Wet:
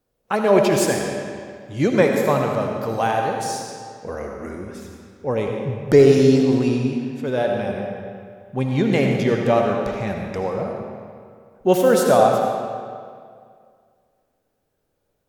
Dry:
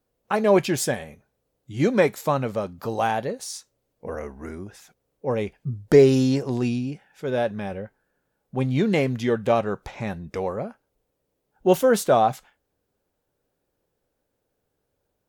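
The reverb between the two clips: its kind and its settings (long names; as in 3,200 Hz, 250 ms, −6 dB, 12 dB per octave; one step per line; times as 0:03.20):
comb and all-pass reverb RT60 2.1 s, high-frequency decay 0.8×, pre-delay 35 ms, DRR 1.5 dB
level +1.5 dB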